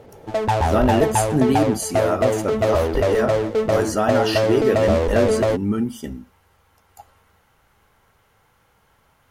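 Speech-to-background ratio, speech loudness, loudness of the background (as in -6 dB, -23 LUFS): -2.0 dB, -23.0 LUFS, -21.0 LUFS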